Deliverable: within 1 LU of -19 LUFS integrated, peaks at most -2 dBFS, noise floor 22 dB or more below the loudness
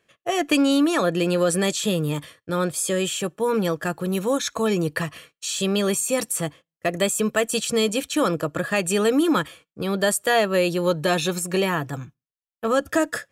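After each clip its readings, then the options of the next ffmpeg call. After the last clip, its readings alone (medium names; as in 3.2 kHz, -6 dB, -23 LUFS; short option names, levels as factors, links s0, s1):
loudness -23.0 LUFS; peak level -8.0 dBFS; loudness target -19.0 LUFS
-> -af "volume=1.58"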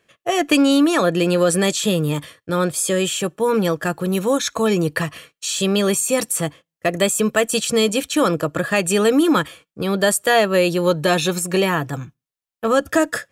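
loudness -19.0 LUFS; peak level -4.0 dBFS; noise floor -86 dBFS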